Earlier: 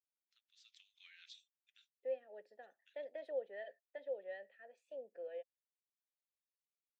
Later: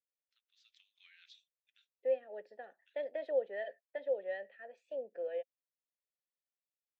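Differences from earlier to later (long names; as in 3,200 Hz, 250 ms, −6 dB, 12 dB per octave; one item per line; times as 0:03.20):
second voice +8.0 dB
master: add high-frequency loss of the air 97 metres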